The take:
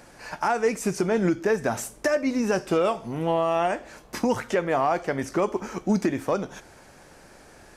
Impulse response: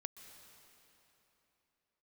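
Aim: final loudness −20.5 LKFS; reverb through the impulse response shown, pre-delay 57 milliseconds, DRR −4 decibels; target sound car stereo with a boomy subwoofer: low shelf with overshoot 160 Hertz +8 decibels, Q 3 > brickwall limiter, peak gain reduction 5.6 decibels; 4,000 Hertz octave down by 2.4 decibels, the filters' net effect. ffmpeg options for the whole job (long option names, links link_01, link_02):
-filter_complex "[0:a]equalizer=frequency=4000:width_type=o:gain=-3.5,asplit=2[link_01][link_02];[1:a]atrim=start_sample=2205,adelay=57[link_03];[link_02][link_03]afir=irnorm=-1:irlink=0,volume=8dB[link_04];[link_01][link_04]amix=inputs=2:normalize=0,lowshelf=frequency=160:width_type=q:width=3:gain=8,volume=2dB,alimiter=limit=-10dB:level=0:latency=1"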